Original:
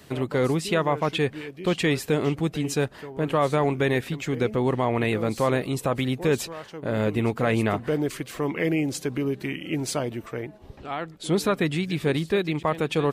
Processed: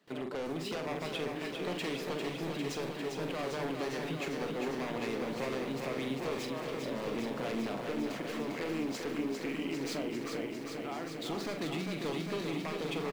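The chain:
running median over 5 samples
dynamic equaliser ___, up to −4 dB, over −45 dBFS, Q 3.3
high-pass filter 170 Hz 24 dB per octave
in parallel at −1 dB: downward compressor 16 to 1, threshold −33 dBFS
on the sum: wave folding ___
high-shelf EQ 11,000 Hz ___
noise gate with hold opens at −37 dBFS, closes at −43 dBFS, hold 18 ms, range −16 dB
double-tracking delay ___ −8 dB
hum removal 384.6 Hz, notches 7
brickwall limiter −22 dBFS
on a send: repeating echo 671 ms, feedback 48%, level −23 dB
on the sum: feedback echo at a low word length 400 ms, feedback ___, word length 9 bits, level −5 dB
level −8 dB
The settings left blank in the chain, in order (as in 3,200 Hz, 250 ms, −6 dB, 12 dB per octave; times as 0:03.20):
1,300 Hz, −17.5 dBFS, −4.5 dB, 44 ms, 80%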